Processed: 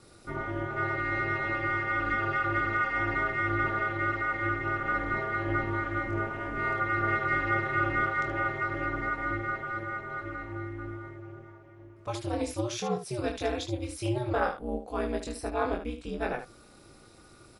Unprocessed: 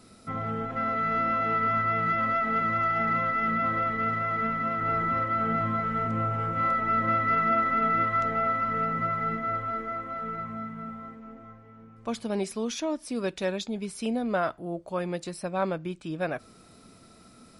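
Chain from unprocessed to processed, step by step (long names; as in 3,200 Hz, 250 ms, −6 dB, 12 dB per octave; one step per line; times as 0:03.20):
ambience of single reflections 23 ms −3.5 dB, 76 ms −8.5 dB
ring modulation 120 Hz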